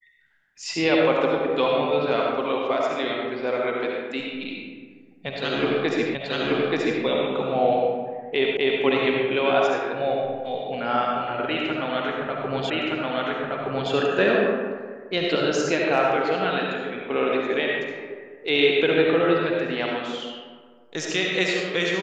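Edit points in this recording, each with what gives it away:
6.15 repeat of the last 0.88 s
8.57 repeat of the last 0.25 s
12.7 repeat of the last 1.22 s

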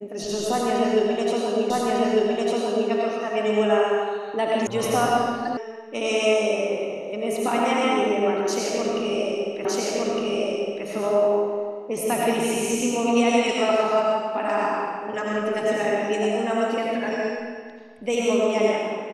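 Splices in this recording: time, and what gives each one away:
1.7 repeat of the last 1.2 s
4.67 sound cut off
5.57 sound cut off
9.65 repeat of the last 1.21 s

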